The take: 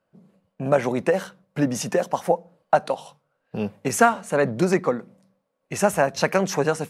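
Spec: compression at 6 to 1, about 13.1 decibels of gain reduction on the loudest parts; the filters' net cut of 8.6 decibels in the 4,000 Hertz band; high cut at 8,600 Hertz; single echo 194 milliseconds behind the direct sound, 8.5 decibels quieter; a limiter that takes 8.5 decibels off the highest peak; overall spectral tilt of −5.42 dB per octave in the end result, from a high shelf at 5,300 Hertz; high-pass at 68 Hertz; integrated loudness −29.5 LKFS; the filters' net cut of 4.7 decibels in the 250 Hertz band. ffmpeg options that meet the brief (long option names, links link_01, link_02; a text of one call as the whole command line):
ffmpeg -i in.wav -af "highpass=68,lowpass=8600,equalizer=frequency=250:width_type=o:gain=-6.5,equalizer=frequency=4000:width_type=o:gain=-7.5,highshelf=frequency=5300:gain=-8.5,acompressor=threshold=-27dB:ratio=6,alimiter=limit=-21dB:level=0:latency=1,aecho=1:1:194:0.376,volume=5.5dB" out.wav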